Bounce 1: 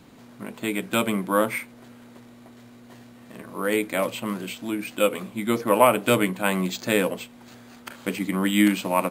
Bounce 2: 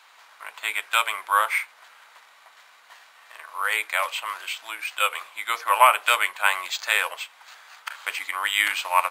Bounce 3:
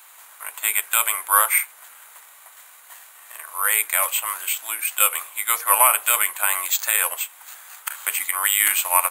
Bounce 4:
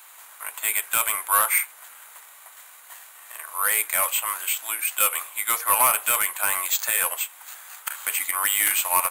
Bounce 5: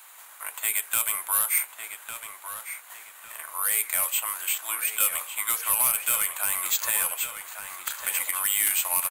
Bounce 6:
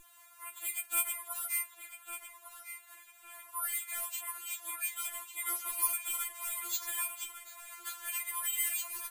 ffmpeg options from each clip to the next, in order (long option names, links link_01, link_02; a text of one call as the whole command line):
ffmpeg -i in.wav -af "highpass=frequency=940:width=0.5412,highpass=frequency=940:width=1.3066,highshelf=frequency=6000:gain=-9,volume=7dB" out.wav
ffmpeg -i in.wav -af "aexciter=amount=10.9:drive=2.5:freq=7300,alimiter=level_in=2dB:limit=-1dB:release=50:level=0:latency=1,volume=-1dB" out.wav
ffmpeg -i in.wav -af "asoftclip=type=tanh:threshold=-11.5dB" out.wav
ffmpeg -i in.wav -filter_complex "[0:a]acrossover=split=210|3000[link_01][link_02][link_03];[link_02]acompressor=threshold=-31dB:ratio=6[link_04];[link_01][link_04][link_03]amix=inputs=3:normalize=0,asplit=2[link_05][link_06];[link_06]adelay=1153,lowpass=frequency=4400:poles=1,volume=-7dB,asplit=2[link_07][link_08];[link_08]adelay=1153,lowpass=frequency=4400:poles=1,volume=0.38,asplit=2[link_09][link_10];[link_10]adelay=1153,lowpass=frequency=4400:poles=1,volume=0.38,asplit=2[link_11][link_12];[link_12]adelay=1153,lowpass=frequency=4400:poles=1,volume=0.38[link_13];[link_05][link_07][link_09][link_11][link_13]amix=inputs=5:normalize=0,volume=-1.5dB" out.wav
ffmpeg -i in.wav -af "aeval=exprs='val(0)+0.00891*(sin(2*PI*50*n/s)+sin(2*PI*2*50*n/s)/2+sin(2*PI*3*50*n/s)/3+sin(2*PI*4*50*n/s)/4+sin(2*PI*5*50*n/s)/5)':channel_layout=same,afftfilt=real='re*4*eq(mod(b,16),0)':imag='im*4*eq(mod(b,16),0)':win_size=2048:overlap=0.75,volume=-8dB" out.wav